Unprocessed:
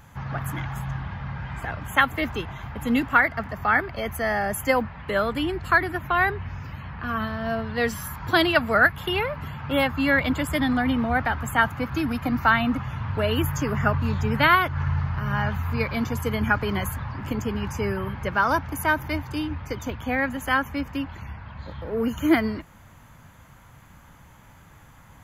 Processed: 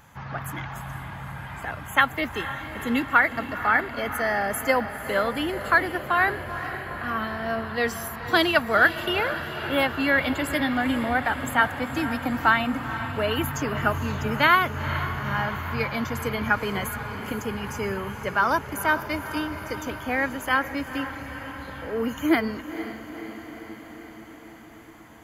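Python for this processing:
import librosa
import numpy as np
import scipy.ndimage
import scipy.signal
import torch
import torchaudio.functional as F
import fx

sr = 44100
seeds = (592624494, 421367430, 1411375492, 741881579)

y = fx.low_shelf(x, sr, hz=160.0, db=-9.5)
y = fx.echo_diffused(y, sr, ms=478, feedback_pct=69, wet_db=-11.5)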